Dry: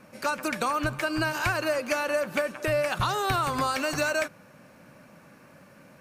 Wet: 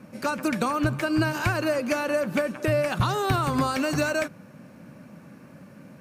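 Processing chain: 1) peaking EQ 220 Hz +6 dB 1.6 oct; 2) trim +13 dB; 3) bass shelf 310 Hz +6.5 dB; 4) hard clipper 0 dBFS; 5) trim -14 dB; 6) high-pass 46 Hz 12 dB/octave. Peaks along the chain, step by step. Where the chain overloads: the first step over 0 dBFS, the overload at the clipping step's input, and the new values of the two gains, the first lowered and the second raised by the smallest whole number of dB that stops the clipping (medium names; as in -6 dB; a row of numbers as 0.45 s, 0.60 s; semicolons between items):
-12.5 dBFS, +0.5 dBFS, +4.0 dBFS, 0.0 dBFS, -14.0 dBFS, -11.0 dBFS; step 2, 4.0 dB; step 2 +9 dB, step 5 -10 dB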